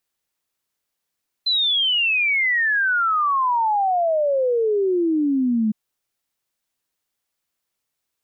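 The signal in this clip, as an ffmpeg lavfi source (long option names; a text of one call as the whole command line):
ffmpeg -f lavfi -i "aevalsrc='0.15*clip(min(t,4.26-t)/0.01,0,1)*sin(2*PI*4100*4.26/log(210/4100)*(exp(log(210/4100)*t/4.26)-1))':duration=4.26:sample_rate=44100" out.wav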